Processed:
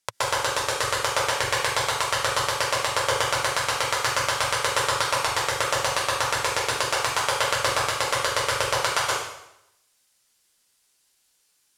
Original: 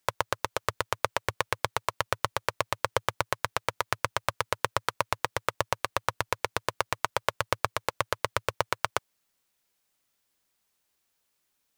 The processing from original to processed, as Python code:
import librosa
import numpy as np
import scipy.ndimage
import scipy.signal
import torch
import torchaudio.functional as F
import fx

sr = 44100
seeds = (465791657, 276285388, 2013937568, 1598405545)

y = scipy.signal.sosfilt(scipy.signal.butter(2, 10000.0, 'lowpass', fs=sr, output='sos'), x)
y = fx.high_shelf(y, sr, hz=3500.0, db=11.0)
y = fx.rev_plate(y, sr, seeds[0], rt60_s=0.8, hf_ratio=0.95, predelay_ms=115, drr_db=-9.5)
y = y * librosa.db_to_amplitude(-5.0)